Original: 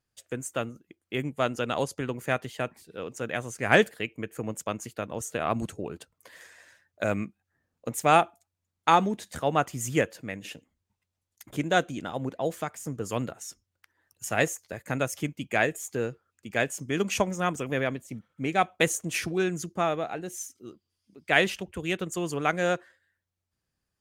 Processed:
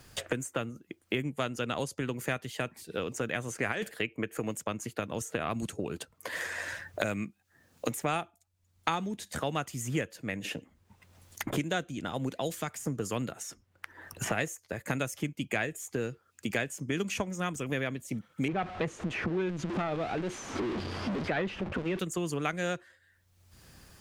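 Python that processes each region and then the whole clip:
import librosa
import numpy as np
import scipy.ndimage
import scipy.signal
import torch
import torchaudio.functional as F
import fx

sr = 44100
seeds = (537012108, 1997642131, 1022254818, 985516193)

y = fx.chain(x, sr, fx.bass_treble(bass_db=-6, treble_db=-3),
    fx.over_compress(threshold_db=-24.0, ratio=-1.0), at=(3.48, 4.53))
y = fx.chain(y, sr, fx.zero_step(step_db=-29.5),
    fx.lowpass(hz=1300.0, slope=12),
    fx.transformer_sat(knee_hz=590.0), at=(18.48, 21.99))
y = fx.dynamic_eq(y, sr, hz=710.0, q=0.74, threshold_db=-38.0, ratio=4.0, max_db=-5)
y = fx.band_squash(y, sr, depth_pct=100)
y = y * 10.0 ** (-2.0 / 20.0)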